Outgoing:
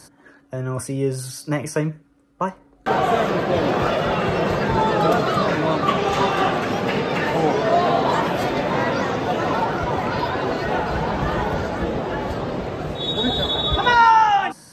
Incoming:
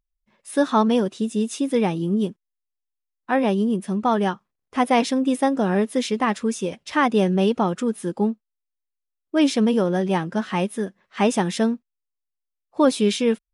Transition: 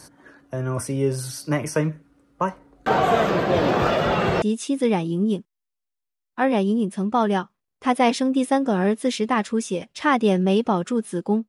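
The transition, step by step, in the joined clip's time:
outgoing
0:04.42: continue with incoming from 0:01.33

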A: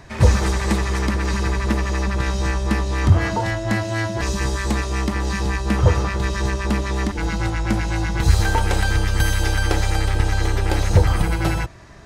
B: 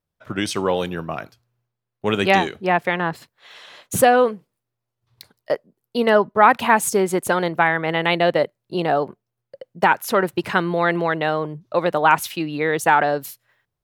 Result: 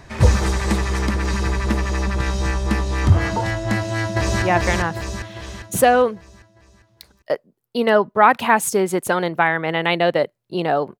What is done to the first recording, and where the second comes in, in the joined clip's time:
A
0:03.76–0:04.42: delay throw 400 ms, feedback 50%, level 0 dB
0:04.42: continue with B from 0:02.62

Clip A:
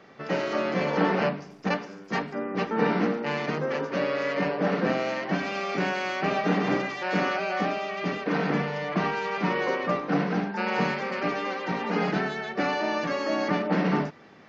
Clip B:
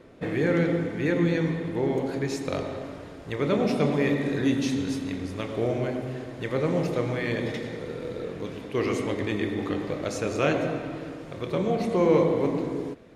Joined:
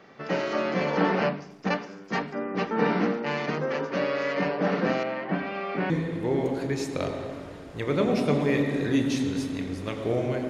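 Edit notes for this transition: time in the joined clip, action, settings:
clip A
0:05.03–0:05.90: high-frequency loss of the air 330 metres
0:05.90: continue with clip B from 0:01.42

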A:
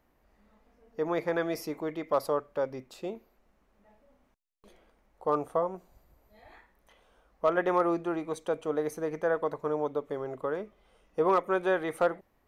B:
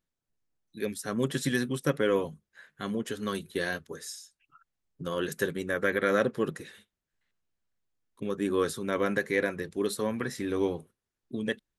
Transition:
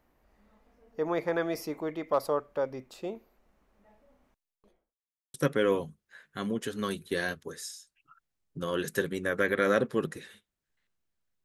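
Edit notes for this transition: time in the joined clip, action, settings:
A
0:04.31–0:04.98: fade out and dull
0:04.98–0:05.34: silence
0:05.34: continue with B from 0:01.78

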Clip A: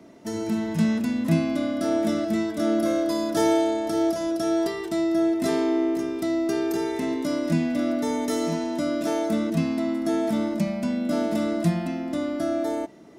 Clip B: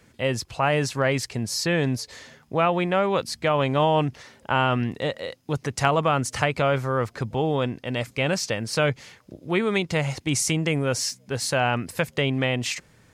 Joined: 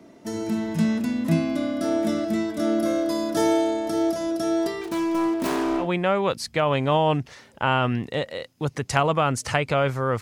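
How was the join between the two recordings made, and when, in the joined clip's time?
clip A
0:04.81–0:05.89: phase distortion by the signal itself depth 0.52 ms
0:05.83: continue with clip B from 0:02.71, crossfade 0.12 s

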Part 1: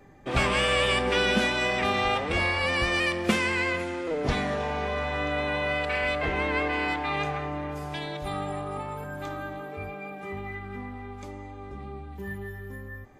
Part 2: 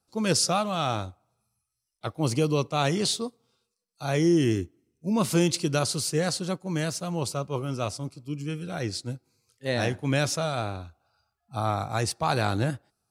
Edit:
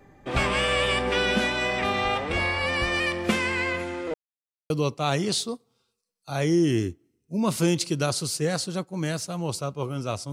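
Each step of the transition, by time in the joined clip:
part 1
0:04.14–0:04.70: silence
0:04.70: continue with part 2 from 0:02.43

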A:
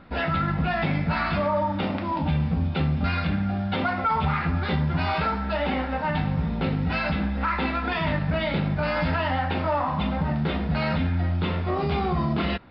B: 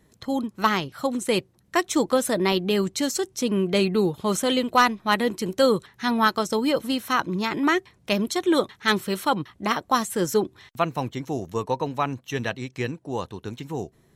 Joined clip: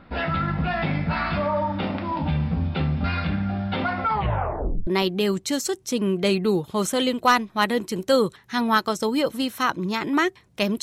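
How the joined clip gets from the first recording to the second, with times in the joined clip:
A
0:04.12: tape stop 0.75 s
0:04.87: continue with B from 0:02.37

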